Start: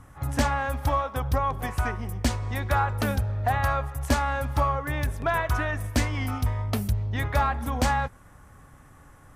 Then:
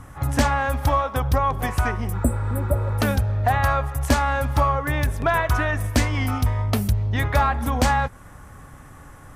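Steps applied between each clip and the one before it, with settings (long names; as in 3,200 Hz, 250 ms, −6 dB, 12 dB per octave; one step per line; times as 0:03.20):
healed spectral selection 0:02.17–0:02.90, 700–7,600 Hz after
in parallel at −1.5 dB: downward compressor, threshold −31 dBFS, peak gain reduction 13.5 dB
on the sum: level +2.5 dB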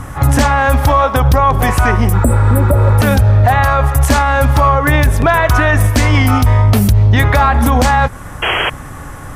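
sound drawn into the spectrogram noise, 0:08.42–0:08.70, 310–3,300 Hz −30 dBFS
boost into a limiter +16 dB
level −1 dB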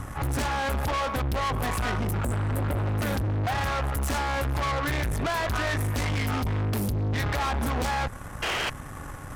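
tube saturation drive 19 dB, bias 0.7
level −6 dB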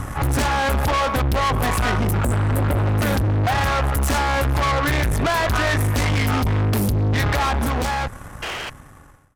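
fade-out on the ending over 2.06 s
level +7.5 dB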